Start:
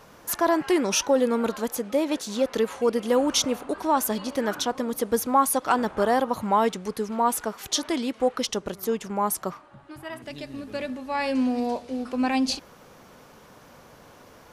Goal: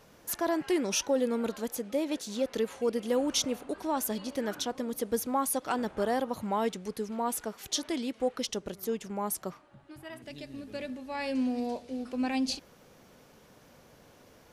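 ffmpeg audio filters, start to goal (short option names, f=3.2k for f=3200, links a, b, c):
-af "equalizer=f=1.1k:w=1.3:g=-6,volume=-5.5dB"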